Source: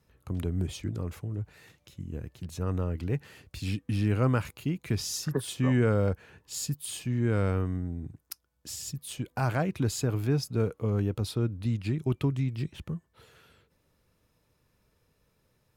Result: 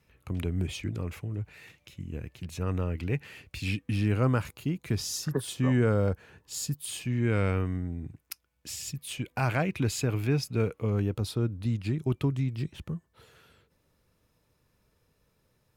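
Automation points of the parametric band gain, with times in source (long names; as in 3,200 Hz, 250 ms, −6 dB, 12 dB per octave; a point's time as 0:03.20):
parametric band 2,400 Hz 0.72 octaves
0:03.70 +9 dB
0:04.34 −1 dB
0:06.67 −1 dB
0:07.28 +9 dB
0:10.76 +9 dB
0:11.25 −0.5 dB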